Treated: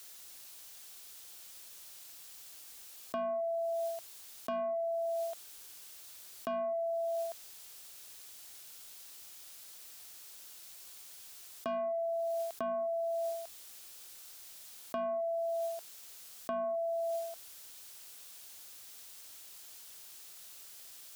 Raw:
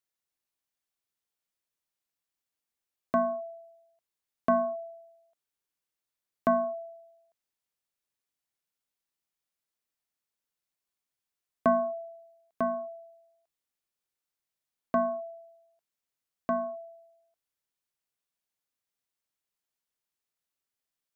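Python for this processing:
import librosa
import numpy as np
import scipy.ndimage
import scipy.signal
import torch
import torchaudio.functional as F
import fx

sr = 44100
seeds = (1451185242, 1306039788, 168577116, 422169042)

y = fx.graphic_eq_10(x, sr, hz=(125, 250, 500, 1000, 2000), db=(-12, -9, -5, -6, -6))
y = 10.0 ** (-29.5 / 20.0) * np.tanh(y / 10.0 ** (-29.5 / 20.0))
y = scipy.signal.sosfilt(scipy.signal.butter(2, 58.0, 'highpass', fs=sr, output='sos'), y)
y = fx.hum_notches(y, sr, base_hz=60, count=3)
y = fx.env_flatten(y, sr, amount_pct=100)
y = F.gain(torch.from_numpy(y), -2.0).numpy()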